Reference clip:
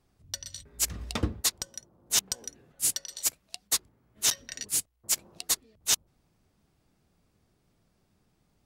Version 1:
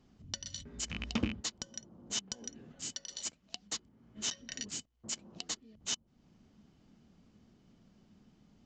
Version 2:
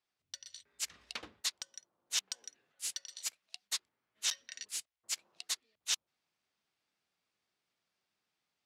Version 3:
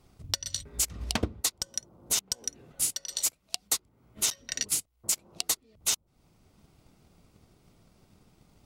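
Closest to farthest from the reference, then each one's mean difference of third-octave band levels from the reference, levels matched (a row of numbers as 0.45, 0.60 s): 3, 2, 1; 4.5, 6.5, 8.5 dB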